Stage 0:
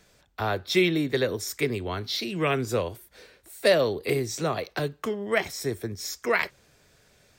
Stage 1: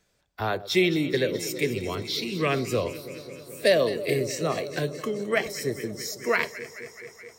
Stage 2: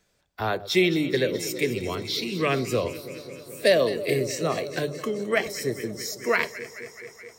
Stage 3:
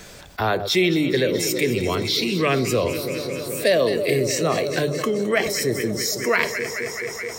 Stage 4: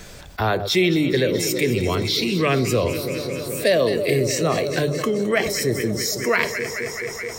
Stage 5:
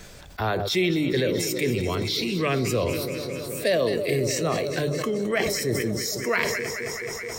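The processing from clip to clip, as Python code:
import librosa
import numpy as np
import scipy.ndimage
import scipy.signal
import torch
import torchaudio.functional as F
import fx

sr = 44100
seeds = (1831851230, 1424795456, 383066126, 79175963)

y1 = fx.echo_alternate(x, sr, ms=107, hz=1100.0, feedback_pct=89, wet_db=-12)
y1 = fx.noise_reduce_blind(y1, sr, reduce_db=10)
y2 = fx.hum_notches(y1, sr, base_hz=50, count=3)
y2 = y2 * librosa.db_to_amplitude(1.0)
y3 = fx.env_flatten(y2, sr, amount_pct=50)
y4 = fx.low_shelf(y3, sr, hz=100.0, db=8.5)
y5 = fx.sustainer(y4, sr, db_per_s=26.0)
y5 = y5 * librosa.db_to_amplitude(-5.0)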